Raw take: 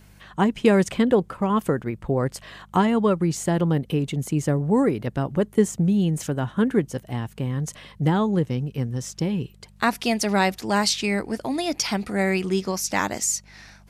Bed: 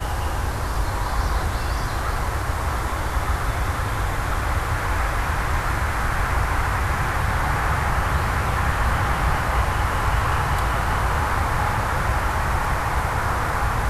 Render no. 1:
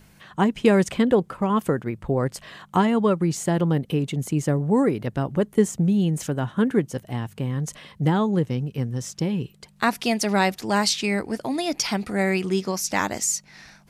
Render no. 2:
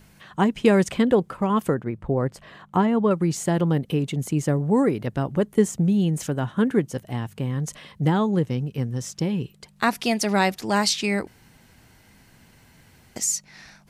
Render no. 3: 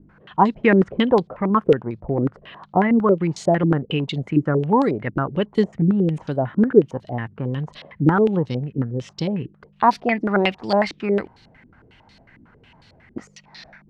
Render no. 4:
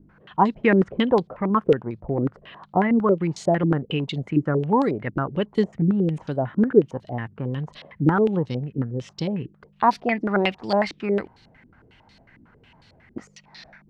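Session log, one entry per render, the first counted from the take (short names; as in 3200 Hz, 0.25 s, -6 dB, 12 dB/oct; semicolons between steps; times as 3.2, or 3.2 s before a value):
de-hum 50 Hz, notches 2
1.74–3.11 high shelf 2500 Hz -11 dB; 11.27–13.16 room tone
stepped low-pass 11 Hz 310–4200 Hz
gain -2.5 dB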